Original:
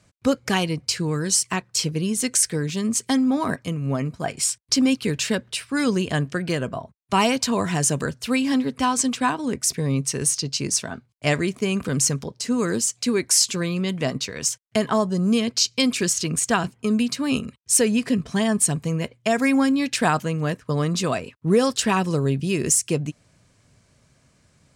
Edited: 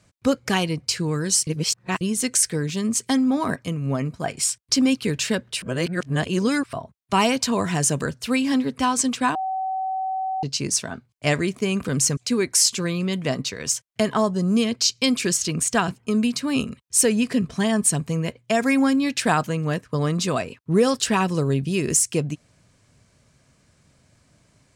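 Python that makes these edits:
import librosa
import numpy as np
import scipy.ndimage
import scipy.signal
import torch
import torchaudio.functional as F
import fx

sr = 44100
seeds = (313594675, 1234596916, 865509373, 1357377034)

y = fx.edit(x, sr, fx.reverse_span(start_s=1.47, length_s=0.54),
    fx.reverse_span(start_s=5.62, length_s=1.11),
    fx.bleep(start_s=9.35, length_s=1.08, hz=760.0, db=-23.0),
    fx.cut(start_s=12.17, length_s=0.76), tone=tone)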